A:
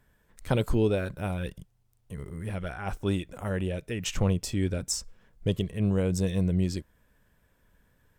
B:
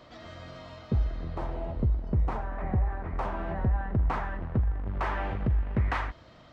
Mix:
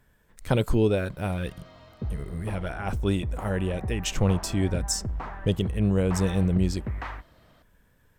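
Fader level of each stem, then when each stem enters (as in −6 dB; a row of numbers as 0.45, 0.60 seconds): +2.5, −5.5 decibels; 0.00, 1.10 seconds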